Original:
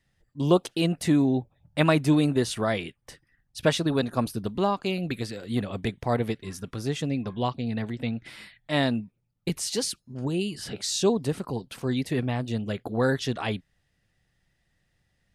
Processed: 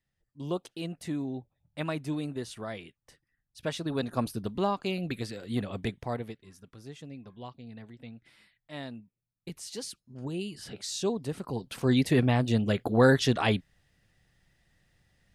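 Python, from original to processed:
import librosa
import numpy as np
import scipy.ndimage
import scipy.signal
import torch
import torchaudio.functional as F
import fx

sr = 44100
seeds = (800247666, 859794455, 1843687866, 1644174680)

y = fx.gain(x, sr, db=fx.line((3.59, -12.0), (4.13, -3.5), (5.92, -3.5), (6.46, -16.0), (9.01, -16.0), (10.31, -7.0), (11.27, -7.0), (11.93, 3.5)))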